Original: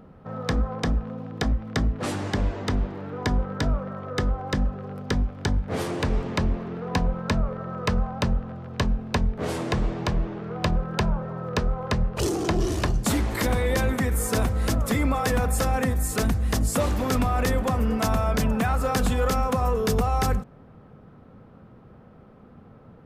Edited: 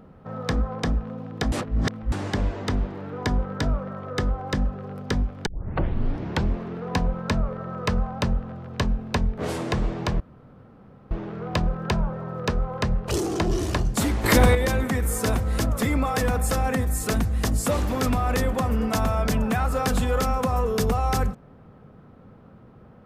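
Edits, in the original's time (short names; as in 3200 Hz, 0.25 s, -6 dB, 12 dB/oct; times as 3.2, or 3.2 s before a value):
1.52–2.12 reverse
5.46 tape start 1.04 s
10.2 insert room tone 0.91 s
13.33–13.64 gain +7.5 dB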